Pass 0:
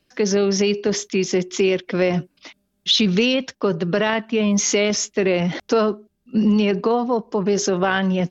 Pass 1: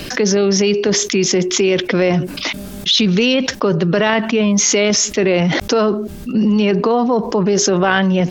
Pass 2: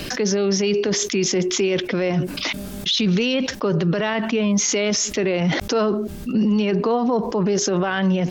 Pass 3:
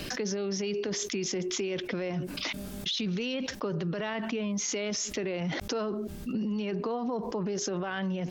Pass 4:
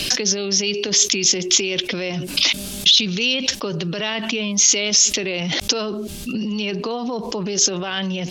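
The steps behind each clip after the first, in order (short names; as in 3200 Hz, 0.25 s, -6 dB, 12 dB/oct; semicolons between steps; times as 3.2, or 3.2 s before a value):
fast leveller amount 70%; gain +1.5 dB
limiter -10.5 dBFS, peak gain reduction 8.5 dB; gain -2 dB
compressor, threshold -21 dBFS, peak gain reduction 6 dB; gain -7.5 dB
band shelf 5500 Hz +12.5 dB 2.6 oct; gain +6.5 dB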